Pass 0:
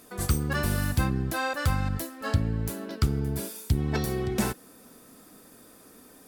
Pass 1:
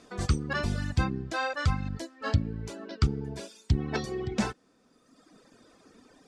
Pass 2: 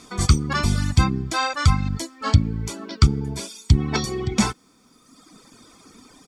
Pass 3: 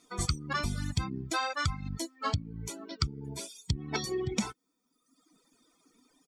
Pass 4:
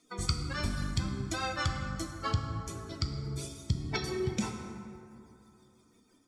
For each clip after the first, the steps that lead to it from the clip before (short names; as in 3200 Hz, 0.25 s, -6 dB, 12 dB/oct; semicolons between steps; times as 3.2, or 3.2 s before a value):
reverb removal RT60 1.5 s; LPF 6700 Hz 24 dB/oct
high shelf 5200 Hz +11 dB; comb 0.9 ms, depth 48%; gain +6.5 dB
per-bin expansion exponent 1.5; compressor 10:1, threshold -25 dBFS, peak gain reduction 16 dB; gain -2 dB
rotary speaker horn 6 Hz; plate-style reverb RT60 2.8 s, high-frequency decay 0.45×, DRR 3 dB